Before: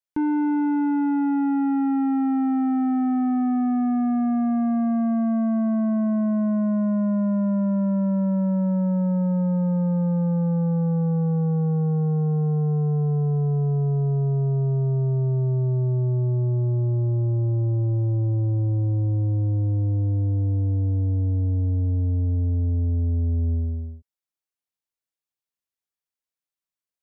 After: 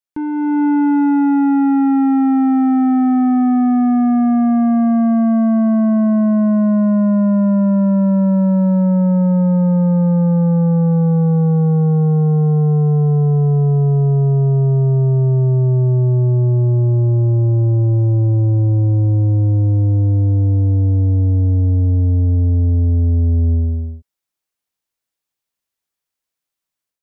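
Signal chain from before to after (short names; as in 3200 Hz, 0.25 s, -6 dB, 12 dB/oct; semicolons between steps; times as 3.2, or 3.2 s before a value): 8.82–10.92 median filter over 41 samples; AGC gain up to 8.5 dB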